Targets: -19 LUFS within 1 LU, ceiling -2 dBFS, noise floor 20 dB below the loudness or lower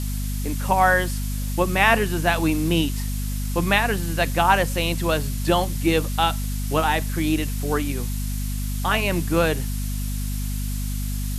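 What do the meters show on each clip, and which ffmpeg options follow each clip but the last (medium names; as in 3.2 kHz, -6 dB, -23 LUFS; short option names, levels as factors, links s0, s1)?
hum 50 Hz; highest harmonic 250 Hz; hum level -24 dBFS; noise floor -26 dBFS; noise floor target -43 dBFS; loudness -22.5 LUFS; peak level -3.0 dBFS; loudness target -19.0 LUFS
-> -af "bandreject=f=50:t=h:w=6,bandreject=f=100:t=h:w=6,bandreject=f=150:t=h:w=6,bandreject=f=200:t=h:w=6,bandreject=f=250:t=h:w=6"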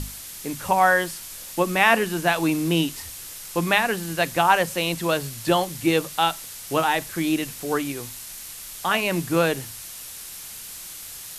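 hum not found; noise floor -38 dBFS; noise floor target -43 dBFS
-> -af "afftdn=nr=6:nf=-38"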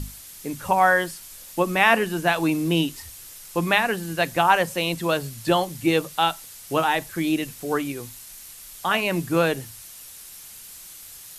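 noise floor -43 dBFS; loudness -23.0 LUFS; peak level -3.0 dBFS; loudness target -19.0 LUFS
-> -af "volume=1.58,alimiter=limit=0.794:level=0:latency=1"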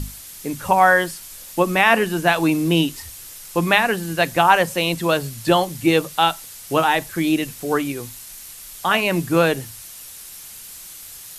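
loudness -19.0 LUFS; peak level -2.0 dBFS; noise floor -39 dBFS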